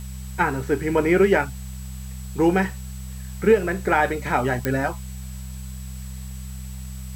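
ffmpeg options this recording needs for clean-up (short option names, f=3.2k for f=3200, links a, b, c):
-af "adeclick=t=4,bandreject=f=64.5:t=h:w=4,bandreject=f=129:t=h:w=4,bandreject=f=193.5:t=h:w=4,bandreject=f=7.8k:w=30,afwtdn=0.0045"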